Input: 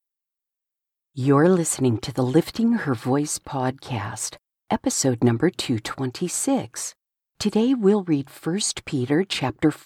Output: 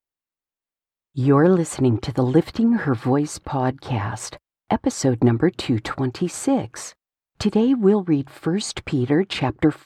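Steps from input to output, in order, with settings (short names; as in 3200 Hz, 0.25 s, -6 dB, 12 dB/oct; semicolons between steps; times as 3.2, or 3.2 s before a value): LPF 2200 Hz 6 dB/oct; bell 69 Hz +4 dB 0.98 oct; in parallel at -1 dB: compressor, threshold -28 dBFS, peak gain reduction 15 dB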